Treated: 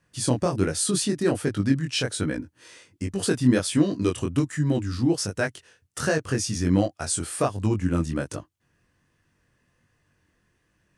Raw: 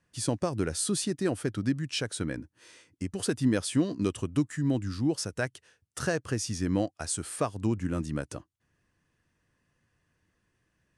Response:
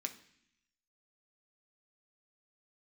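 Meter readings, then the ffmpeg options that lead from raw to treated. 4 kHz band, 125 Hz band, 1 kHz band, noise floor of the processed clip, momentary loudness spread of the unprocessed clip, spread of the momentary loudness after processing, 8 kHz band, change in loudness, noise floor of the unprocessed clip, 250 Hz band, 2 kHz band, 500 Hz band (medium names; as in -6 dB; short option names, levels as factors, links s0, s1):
+5.5 dB, +6.0 dB, +5.5 dB, -70 dBFS, 8 LU, 7 LU, +5.5 dB, +5.5 dB, -76 dBFS, +5.5 dB, +5.5 dB, +6.0 dB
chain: -af "flanger=delay=19.5:depth=4.9:speed=1.3,volume=2.66"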